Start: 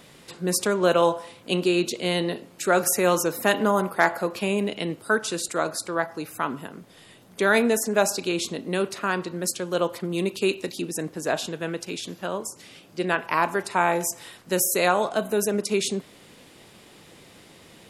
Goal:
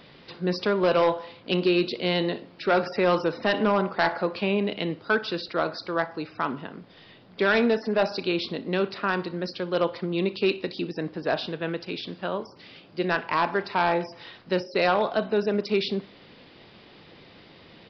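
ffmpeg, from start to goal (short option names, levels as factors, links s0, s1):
-af "aresample=11025,volume=5.62,asoftclip=hard,volume=0.178,aresample=44100,aecho=1:1:61|122:0.0891|0.0187"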